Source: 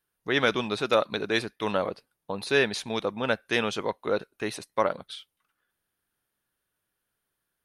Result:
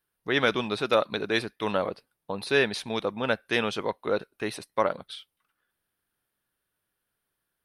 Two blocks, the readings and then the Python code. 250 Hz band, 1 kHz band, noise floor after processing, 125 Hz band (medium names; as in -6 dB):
0.0 dB, 0.0 dB, -82 dBFS, 0.0 dB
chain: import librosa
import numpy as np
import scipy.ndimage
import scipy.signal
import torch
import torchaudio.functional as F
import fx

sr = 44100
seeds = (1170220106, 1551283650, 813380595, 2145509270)

y = fx.peak_eq(x, sr, hz=6800.0, db=-6.5, octaves=0.35)